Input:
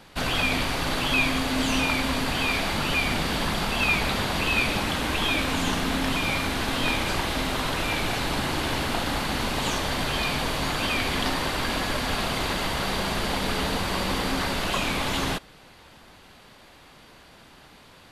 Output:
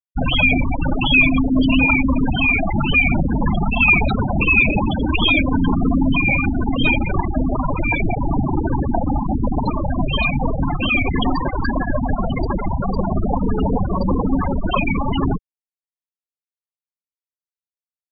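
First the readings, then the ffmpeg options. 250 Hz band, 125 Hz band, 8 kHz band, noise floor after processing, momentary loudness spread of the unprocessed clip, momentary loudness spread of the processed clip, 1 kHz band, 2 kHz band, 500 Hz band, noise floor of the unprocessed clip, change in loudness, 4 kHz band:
+10.5 dB, +10.5 dB, below −40 dB, below −85 dBFS, 4 LU, 8 LU, +3.5 dB, +7.0 dB, +4.5 dB, −51 dBFS, +7.0 dB, −0.5 dB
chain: -af "acontrast=79,asoftclip=type=tanh:threshold=-10.5dB,afftfilt=real='re*gte(hypot(re,im),0.282)':imag='im*gte(hypot(re,im),0.282)':win_size=1024:overlap=0.75,volume=6.5dB"

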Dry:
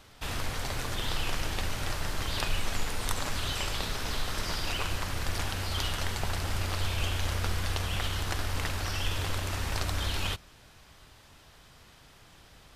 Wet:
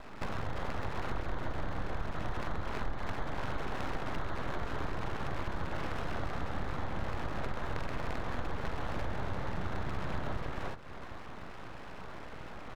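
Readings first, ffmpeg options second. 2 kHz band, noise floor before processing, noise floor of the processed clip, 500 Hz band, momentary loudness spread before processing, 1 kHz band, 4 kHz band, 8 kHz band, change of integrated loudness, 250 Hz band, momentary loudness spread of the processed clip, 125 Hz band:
−6.0 dB, −56 dBFS, −44 dBFS, 0.0 dB, 3 LU, −1.5 dB, −16.0 dB, −21.0 dB, −7.0 dB, 0.0 dB, 9 LU, −6.0 dB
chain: -filter_complex "[0:a]acrusher=samples=17:mix=1:aa=0.000001,lowpass=2200,asplit=2[link_01][link_02];[link_02]aecho=0:1:43|128|344|392:0.473|0.631|0.708|0.631[link_03];[link_01][link_03]amix=inputs=2:normalize=0,acompressor=threshold=-42dB:ratio=4,equalizer=frequency=410:width=7.5:gain=-4.5,aeval=exprs='abs(val(0))':channel_layout=same,volume=9dB"

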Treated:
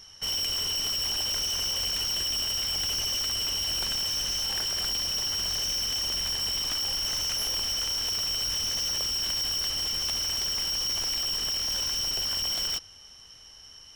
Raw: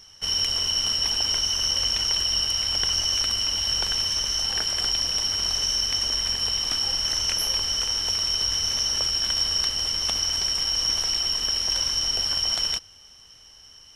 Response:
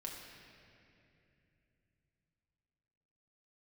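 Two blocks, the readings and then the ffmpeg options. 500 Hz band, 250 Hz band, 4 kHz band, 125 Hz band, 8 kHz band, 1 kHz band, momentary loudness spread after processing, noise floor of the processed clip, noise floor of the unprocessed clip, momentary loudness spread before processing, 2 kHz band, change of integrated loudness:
−3.0 dB, −2.5 dB, −4.5 dB, −4.0 dB, −3.5 dB, −4.0 dB, 0 LU, −50 dBFS, −50 dBFS, 2 LU, −3.5 dB, −4.5 dB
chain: -af "volume=27dB,asoftclip=hard,volume=-27dB"

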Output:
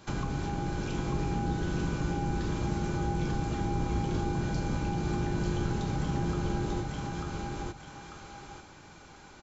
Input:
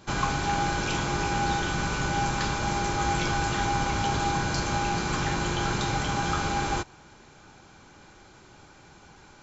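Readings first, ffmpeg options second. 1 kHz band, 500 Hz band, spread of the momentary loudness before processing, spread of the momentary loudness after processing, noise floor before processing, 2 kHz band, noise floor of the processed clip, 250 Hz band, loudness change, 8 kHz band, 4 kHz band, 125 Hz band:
−10.0 dB, −3.0 dB, 1 LU, 15 LU, −53 dBFS, −12.0 dB, −52 dBFS, 0.0 dB, −5.0 dB, can't be measured, −12.5 dB, 0.0 dB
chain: -filter_complex "[0:a]aecho=1:1:893|1786|2679:0.631|0.114|0.0204,acrossover=split=480[link_01][link_02];[link_02]acompressor=threshold=-39dB:ratio=10[link_03];[link_01][link_03]amix=inputs=2:normalize=0,volume=-1.5dB"

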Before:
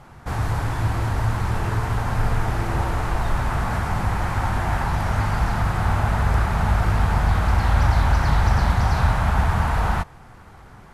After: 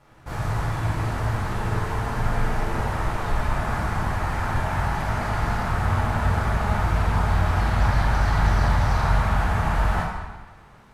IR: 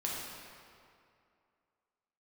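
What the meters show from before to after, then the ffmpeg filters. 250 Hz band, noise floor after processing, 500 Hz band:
−1.5 dB, −48 dBFS, 0.0 dB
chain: -filter_complex "[0:a]aeval=exprs='sgn(val(0))*max(abs(val(0))-0.00398,0)':channel_layout=same[link_01];[1:a]atrim=start_sample=2205,asetrate=79380,aresample=44100[link_02];[link_01][link_02]afir=irnorm=-1:irlink=0"

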